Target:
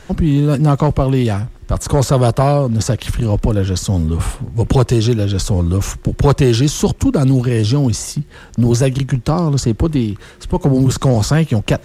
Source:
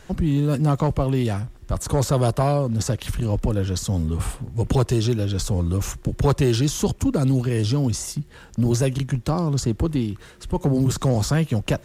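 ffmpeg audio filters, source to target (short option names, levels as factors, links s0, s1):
-af "highshelf=f=12000:g=-7.5,volume=2.24"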